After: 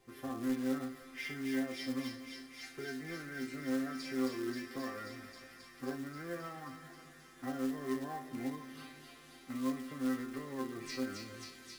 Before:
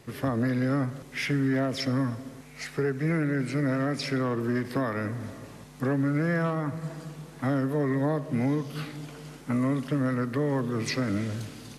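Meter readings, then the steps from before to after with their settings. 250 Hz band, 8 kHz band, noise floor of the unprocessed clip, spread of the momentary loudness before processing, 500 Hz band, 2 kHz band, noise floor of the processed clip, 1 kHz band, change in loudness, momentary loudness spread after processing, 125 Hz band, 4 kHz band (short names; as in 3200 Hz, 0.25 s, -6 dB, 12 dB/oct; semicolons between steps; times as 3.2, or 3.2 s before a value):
-10.0 dB, -6.5 dB, -47 dBFS, 12 LU, -12.5 dB, -10.5 dB, -57 dBFS, -10.5 dB, -11.5 dB, 14 LU, -23.0 dB, -8.0 dB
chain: resonator bank C4 sus4, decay 0.34 s; on a send: thin delay 0.267 s, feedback 83%, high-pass 2400 Hz, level -3.5 dB; on the sum: short-mantissa float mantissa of 2-bit; spring tank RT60 2.9 s, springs 34 ms, DRR 16.5 dB; gain +7 dB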